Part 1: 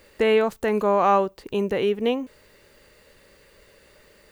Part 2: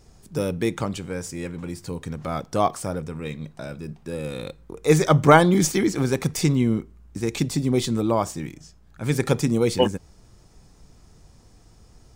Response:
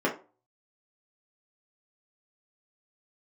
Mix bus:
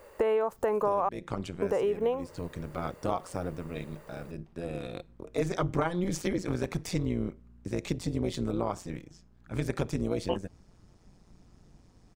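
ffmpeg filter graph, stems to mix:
-filter_complex "[0:a]equalizer=frequency=250:width_type=o:width=1:gain=-6,equalizer=frequency=500:width_type=o:width=1:gain=6,equalizer=frequency=1000:width_type=o:width=1:gain=9,equalizer=frequency=2000:width_type=o:width=1:gain=-4,equalizer=frequency=4000:width_type=o:width=1:gain=-9,volume=-1.5dB,asplit=3[link_01][link_02][link_03];[link_01]atrim=end=1.09,asetpts=PTS-STARTPTS,afade=type=out:start_time=1.086:duration=0.004:curve=hsin[link_04];[link_02]atrim=start=1.09:end=1.62,asetpts=PTS-STARTPTS,volume=0[link_05];[link_03]atrim=start=1.62,asetpts=PTS-STARTPTS,afade=type=in:duration=0.004:curve=hsin[link_06];[link_04][link_05][link_06]concat=n=3:v=0:a=1[link_07];[1:a]highshelf=frequency=5500:gain=-9,tremolo=f=180:d=0.824,adelay=500,volume=-2.5dB[link_08];[link_07][link_08]amix=inputs=2:normalize=0,acompressor=threshold=-25dB:ratio=6"

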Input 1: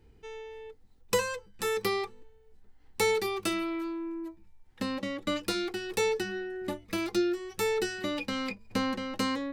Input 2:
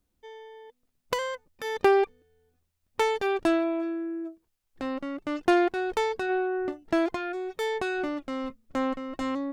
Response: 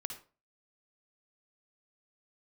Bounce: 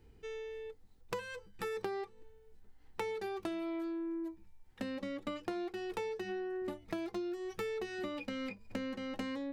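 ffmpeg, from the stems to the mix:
-filter_complex "[0:a]acrossover=split=2900[link_01][link_02];[link_02]acompressor=threshold=-47dB:ratio=4:attack=1:release=60[link_03];[link_01][link_03]amix=inputs=2:normalize=0,volume=-2dB[link_04];[1:a]volume=-7dB[link_05];[link_04][link_05]amix=inputs=2:normalize=0,acompressor=threshold=-37dB:ratio=5"

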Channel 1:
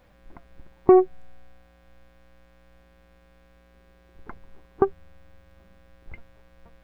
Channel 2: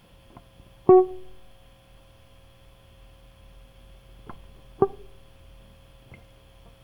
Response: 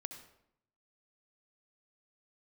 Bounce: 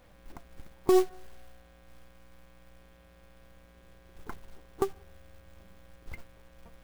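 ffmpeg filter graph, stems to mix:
-filter_complex "[0:a]volume=-1dB[link_01];[1:a]aeval=exprs='abs(val(0))':channel_layout=same,volume=-15dB,asplit=2[link_02][link_03];[link_03]volume=-8dB[link_04];[2:a]atrim=start_sample=2205[link_05];[link_04][link_05]afir=irnorm=-1:irlink=0[link_06];[link_01][link_02][link_06]amix=inputs=3:normalize=0,acrusher=bits=4:mode=log:mix=0:aa=0.000001,alimiter=limit=-12.5dB:level=0:latency=1:release=168"

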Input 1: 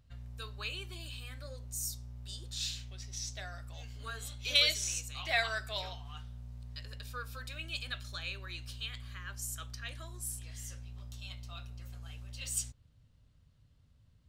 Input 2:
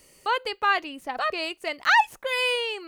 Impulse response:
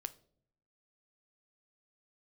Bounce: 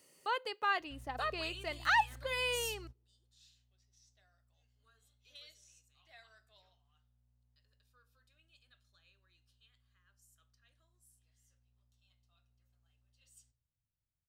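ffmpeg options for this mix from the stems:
-filter_complex "[0:a]adelay=800,volume=-5.5dB,asplit=2[link_01][link_02];[link_02]volume=-23dB[link_03];[1:a]highpass=120,volume=-11dB,asplit=3[link_04][link_05][link_06];[link_05]volume=-15dB[link_07];[link_06]apad=whole_len=665160[link_08];[link_01][link_08]sidechaingate=range=-33dB:threshold=-56dB:ratio=16:detection=peak[link_09];[2:a]atrim=start_sample=2205[link_10];[link_03][link_07]amix=inputs=2:normalize=0[link_11];[link_11][link_10]afir=irnorm=-1:irlink=0[link_12];[link_09][link_04][link_12]amix=inputs=3:normalize=0,bandreject=frequency=2300:width=13"

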